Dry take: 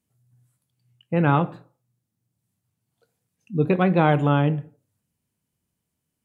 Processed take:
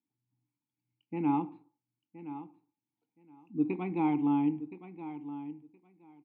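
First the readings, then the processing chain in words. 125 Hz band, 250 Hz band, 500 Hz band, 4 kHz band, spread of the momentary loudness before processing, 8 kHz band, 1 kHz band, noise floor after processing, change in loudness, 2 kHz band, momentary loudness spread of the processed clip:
-19.5 dB, -5.5 dB, -16.5 dB, under -20 dB, 12 LU, n/a, -11.0 dB, under -85 dBFS, -11.5 dB, -19.0 dB, 17 LU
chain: vowel filter u; feedback echo 1.02 s, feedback 16%, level -13 dB

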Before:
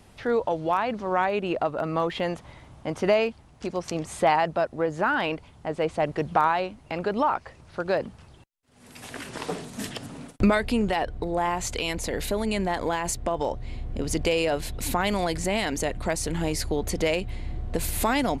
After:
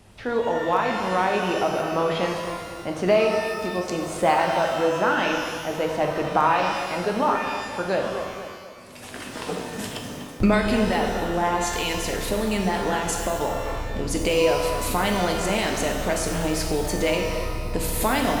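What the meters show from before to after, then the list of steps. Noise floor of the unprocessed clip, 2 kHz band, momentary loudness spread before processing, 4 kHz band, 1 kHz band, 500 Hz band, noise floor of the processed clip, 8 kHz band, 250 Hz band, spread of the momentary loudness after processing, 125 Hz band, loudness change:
-53 dBFS, +3.5 dB, 12 LU, +4.0 dB, +3.0 dB, +3.0 dB, -39 dBFS, +3.0 dB, +2.5 dB, 11 LU, +2.0 dB, +3.0 dB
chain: on a send: tape echo 0.244 s, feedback 54%, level -9 dB; on the sum: shimmer reverb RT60 1.3 s, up +12 st, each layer -8 dB, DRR 2 dB

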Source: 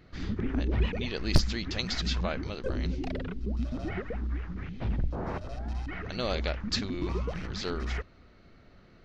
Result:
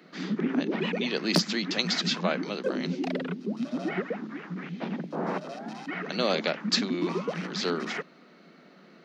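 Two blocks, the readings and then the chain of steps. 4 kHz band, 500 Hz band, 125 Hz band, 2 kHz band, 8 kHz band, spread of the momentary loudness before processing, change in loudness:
+5.5 dB, +5.5 dB, -5.0 dB, +5.5 dB, n/a, 8 LU, +3.0 dB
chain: steep high-pass 160 Hz 96 dB/oct; gain +5.5 dB

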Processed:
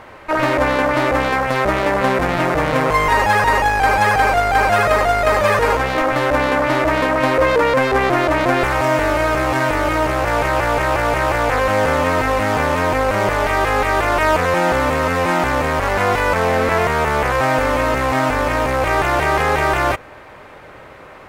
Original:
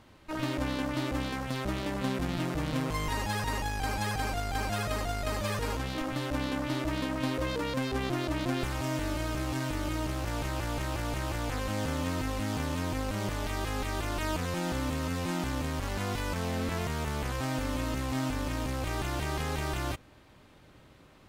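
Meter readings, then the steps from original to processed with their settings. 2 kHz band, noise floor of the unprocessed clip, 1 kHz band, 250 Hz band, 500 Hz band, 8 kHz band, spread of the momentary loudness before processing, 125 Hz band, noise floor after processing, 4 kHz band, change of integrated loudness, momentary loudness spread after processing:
+20.0 dB, -56 dBFS, +20.5 dB, +10.0 dB, +20.0 dB, +9.0 dB, 2 LU, +9.0 dB, -40 dBFS, +10.5 dB, +16.5 dB, 3 LU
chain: band shelf 990 Hz +12 dB 2.9 oct; in parallel at -8 dB: soft clip -26 dBFS, distortion -8 dB; on the sum: gain +7 dB

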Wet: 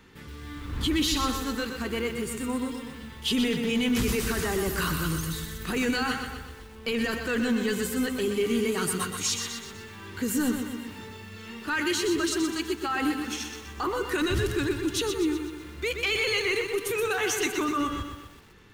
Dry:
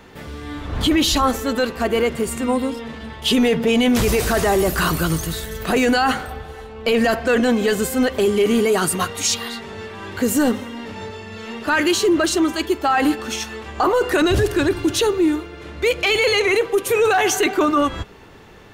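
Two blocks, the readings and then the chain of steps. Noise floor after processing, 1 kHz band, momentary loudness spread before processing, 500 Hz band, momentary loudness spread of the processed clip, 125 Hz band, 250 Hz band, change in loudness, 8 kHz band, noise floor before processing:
-45 dBFS, -12.0 dB, 15 LU, -11.5 dB, 13 LU, -7.0 dB, -8.5 dB, -9.0 dB, -7.0 dB, -37 dBFS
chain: bell 650 Hz -14.5 dB 0.69 oct; lo-fi delay 0.124 s, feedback 55%, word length 7-bit, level -6.5 dB; gain -8 dB

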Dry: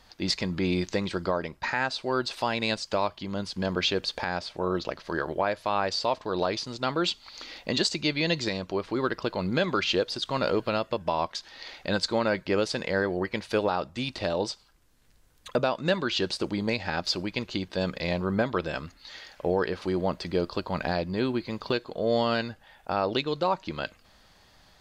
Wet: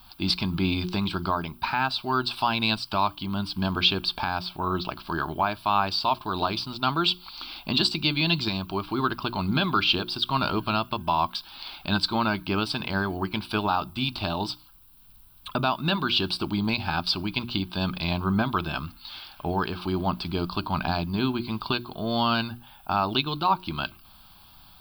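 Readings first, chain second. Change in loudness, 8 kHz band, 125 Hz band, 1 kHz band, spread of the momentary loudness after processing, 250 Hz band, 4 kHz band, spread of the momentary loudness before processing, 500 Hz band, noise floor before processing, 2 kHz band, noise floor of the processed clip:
+2.0 dB, -7.0 dB, +4.5 dB, +5.0 dB, 8 LU, +2.5 dB, +5.0 dB, 7 LU, -5.5 dB, -59 dBFS, +1.5 dB, -52 dBFS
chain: notches 60/120/180/240/300/360 Hz; added noise violet -62 dBFS; fixed phaser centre 1900 Hz, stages 6; gain +6.5 dB

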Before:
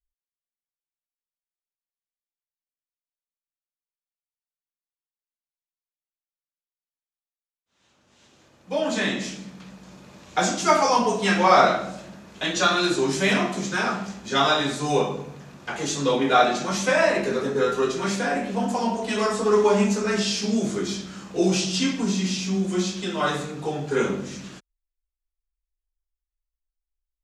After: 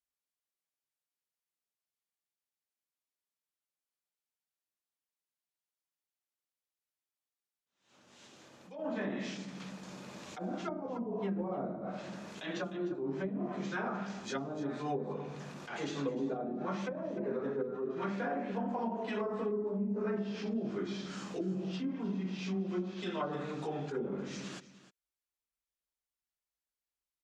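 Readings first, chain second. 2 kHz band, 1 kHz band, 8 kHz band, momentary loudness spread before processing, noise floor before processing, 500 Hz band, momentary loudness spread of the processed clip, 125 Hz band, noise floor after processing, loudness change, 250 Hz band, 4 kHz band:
-18.5 dB, -18.5 dB, -24.0 dB, 12 LU, under -85 dBFS, -13.5 dB, 9 LU, -11.0 dB, under -85 dBFS, -15.0 dB, -10.5 dB, -21.5 dB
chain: HPF 140 Hz 12 dB/oct; treble ducked by the level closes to 300 Hz, closed at -17 dBFS; compressor 2:1, threshold -40 dBFS, peak gain reduction 12.5 dB; echo 0.304 s -16 dB; attack slew limiter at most 110 dB/s

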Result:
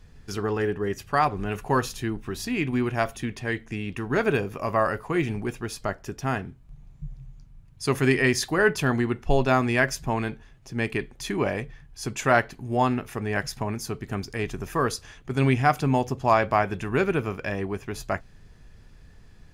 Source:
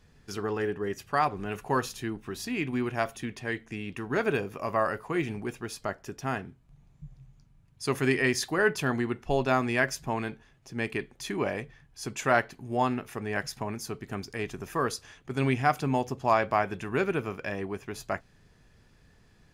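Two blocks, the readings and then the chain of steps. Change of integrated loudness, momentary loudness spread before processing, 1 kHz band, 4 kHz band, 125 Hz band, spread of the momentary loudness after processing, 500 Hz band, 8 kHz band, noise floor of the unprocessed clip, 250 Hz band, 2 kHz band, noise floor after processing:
+4.0 dB, 11 LU, +3.5 dB, +3.5 dB, +7.0 dB, 11 LU, +4.0 dB, +3.5 dB, -61 dBFS, +4.5 dB, +3.5 dB, -51 dBFS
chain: low shelf 77 Hz +12 dB; gain +3.5 dB

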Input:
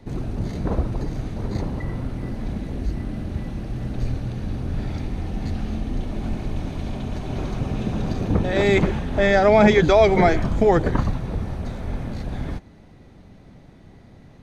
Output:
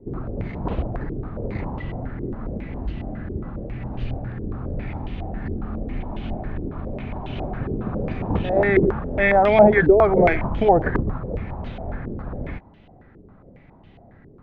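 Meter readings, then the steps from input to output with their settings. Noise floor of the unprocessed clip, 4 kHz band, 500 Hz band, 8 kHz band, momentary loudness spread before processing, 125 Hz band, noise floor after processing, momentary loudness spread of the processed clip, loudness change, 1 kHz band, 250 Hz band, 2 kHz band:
-48 dBFS, -9.0 dB, +1.0 dB, n/a, 15 LU, -2.5 dB, -50 dBFS, 17 LU, 0.0 dB, +1.5 dB, -1.5 dB, +1.5 dB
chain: air absorption 57 m; stepped low-pass 7.3 Hz 400–3000 Hz; gain -3 dB

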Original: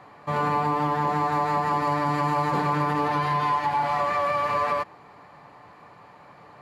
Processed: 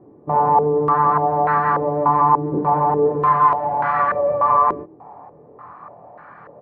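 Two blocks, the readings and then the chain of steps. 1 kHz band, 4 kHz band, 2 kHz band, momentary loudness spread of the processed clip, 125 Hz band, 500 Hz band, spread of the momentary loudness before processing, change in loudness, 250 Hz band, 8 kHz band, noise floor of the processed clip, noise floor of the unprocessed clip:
+7.5 dB, under -15 dB, +1.5 dB, 4 LU, +2.0 dB, +9.5 dB, 2 LU, +7.0 dB, +3.5 dB, n/a, -47 dBFS, -50 dBFS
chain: doubler 25 ms -5.5 dB; stepped low-pass 3.4 Hz 360–1500 Hz; gain +1.5 dB

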